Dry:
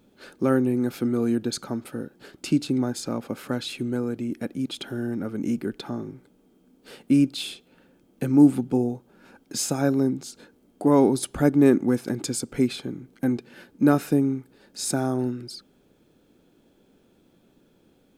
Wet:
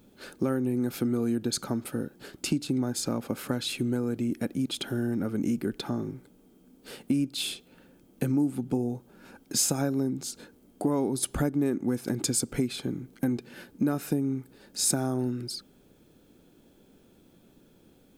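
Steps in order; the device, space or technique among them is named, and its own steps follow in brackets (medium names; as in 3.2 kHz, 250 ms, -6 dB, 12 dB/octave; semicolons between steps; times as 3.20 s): ASMR close-microphone chain (bass shelf 180 Hz +4.5 dB; compression 5:1, threshold -24 dBFS, peak gain reduction 14 dB; treble shelf 6.8 kHz +7.5 dB)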